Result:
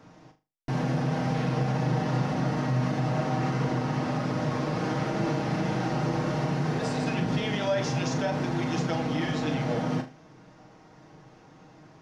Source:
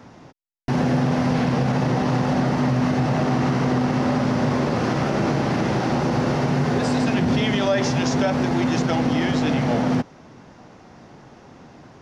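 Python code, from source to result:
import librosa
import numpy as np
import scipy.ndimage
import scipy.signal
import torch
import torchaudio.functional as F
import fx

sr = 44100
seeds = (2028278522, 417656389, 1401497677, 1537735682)

p1 = x + 0.52 * np.pad(x, (int(6.4 * sr / 1000.0), 0))[:len(x)]
p2 = p1 + fx.room_flutter(p1, sr, wall_m=6.7, rt60_s=0.28, dry=0)
y = p2 * librosa.db_to_amplitude(-8.5)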